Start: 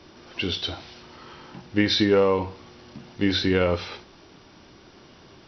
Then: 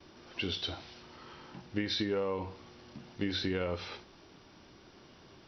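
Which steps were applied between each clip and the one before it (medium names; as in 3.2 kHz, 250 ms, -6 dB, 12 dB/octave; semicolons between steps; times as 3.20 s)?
gate with hold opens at -44 dBFS; compression 5:1, threshold -23 dBFS, peak gain reduction 7.5 dB; trim -6.5 dB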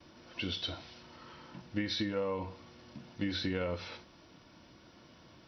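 comb of notches 400 Hz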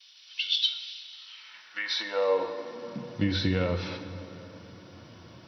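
high-pass sweep 3.4 kHz -> 100 Hz, 1.25–3.28 s; plate-style reverb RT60 3.8 s, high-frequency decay 0.6×, DRR 8.5 dB; trim +5.5 dB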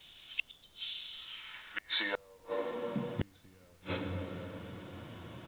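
resampled via 8 kHz; inverted gate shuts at -21 dBFS, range -36 dB; added noise pink -68 dBFS; trim +1.5 dB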